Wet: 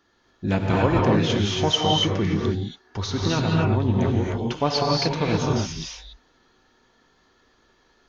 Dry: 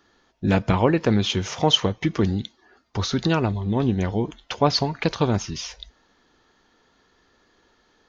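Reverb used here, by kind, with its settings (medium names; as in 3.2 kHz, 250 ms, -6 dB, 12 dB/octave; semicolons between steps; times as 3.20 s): gated-style reverb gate 310 ms rising, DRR -2.5 dB; trim -4 dB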